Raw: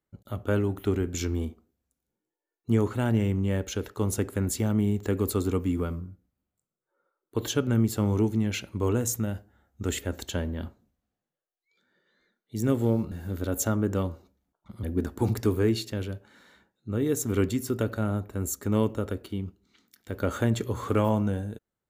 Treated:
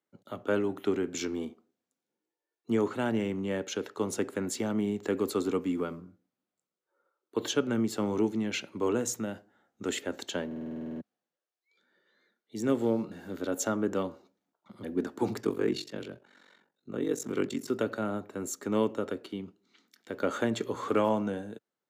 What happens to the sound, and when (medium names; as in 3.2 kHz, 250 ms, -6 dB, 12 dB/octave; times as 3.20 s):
10.46 s: stutter in place 0.05 s, 11 plays
15.41–17.68 s: ring modulator 23 Hz
whole clip: high-pass 110 Hz 24 dB/octave; three-band isolator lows -15 dB, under 210 Hz, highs -13 dB, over 7.6 kHz